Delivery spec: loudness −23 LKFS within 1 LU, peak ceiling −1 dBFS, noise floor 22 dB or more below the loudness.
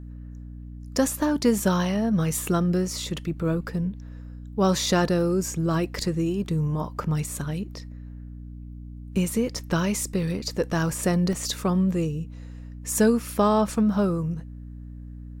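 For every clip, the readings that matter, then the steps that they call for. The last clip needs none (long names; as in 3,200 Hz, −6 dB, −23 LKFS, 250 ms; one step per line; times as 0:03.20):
number of dropouts 1; longest dropout 2.7 ms; mains hum 60 Hz; hum harmonics up to 300 Hz; level of the hum −37 dBFS; integrated loudness −25.0 LKFS; sample peak −9.0 dBFS; target loudness −23.0 LKFS
→ repair the gap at 0:11.33, 2.7 ms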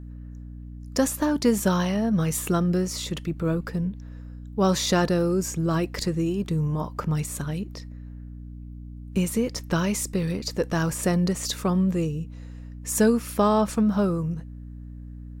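number of dropouts 0; mains hum 60 Hz; hum harmonics up to 300 Hz; level of the hum −37 dBFS
→ mains-hum notches 60/120/180/240/300 Hz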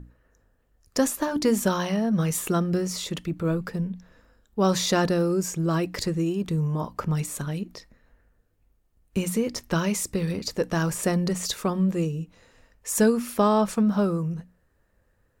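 mains hum none found; integrated loudness −25.5 LKFS; sample peak −10.0 dBFS; target loudness −23.0 LKFS
→ level +2.5 dB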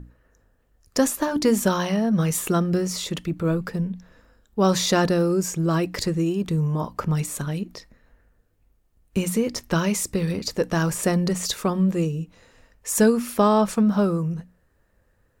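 integrated loudness −23.0 LKFS; sample peak −7.5 dBFS; background noise floor −65 dBFS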